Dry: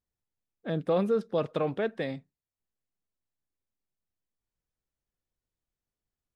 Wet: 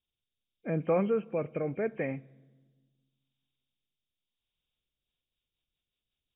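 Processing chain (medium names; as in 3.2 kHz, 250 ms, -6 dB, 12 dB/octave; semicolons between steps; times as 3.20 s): knee-point frequency compression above 2.1 kHz 4:1; rotary cabinet horn 0.8 Hz, later 5.5 Hz, at 4.62 s; on a send: reverberation RT60 1.4 s, pre-delay 3 ms, DRR 21.5 dB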